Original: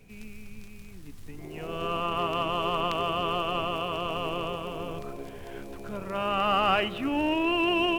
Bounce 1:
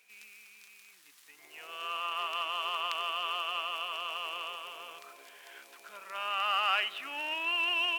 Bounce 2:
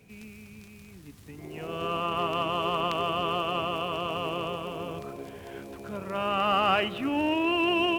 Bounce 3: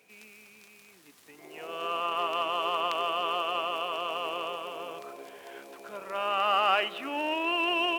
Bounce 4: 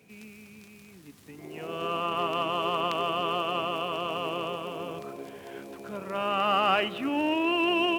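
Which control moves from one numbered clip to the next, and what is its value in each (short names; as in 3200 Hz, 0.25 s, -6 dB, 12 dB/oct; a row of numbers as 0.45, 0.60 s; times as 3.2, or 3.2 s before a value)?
HPF, cutoff: 1400, 69, 520, 180 Hz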